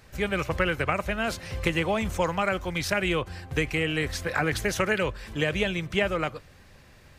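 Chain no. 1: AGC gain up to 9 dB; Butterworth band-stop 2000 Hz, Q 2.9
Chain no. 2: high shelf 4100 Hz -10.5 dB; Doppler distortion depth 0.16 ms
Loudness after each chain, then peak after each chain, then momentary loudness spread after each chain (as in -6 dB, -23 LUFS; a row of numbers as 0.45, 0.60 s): -21.0, -28.5 LUFS; -3.5, -11.5 dBFS; 4, 5 LU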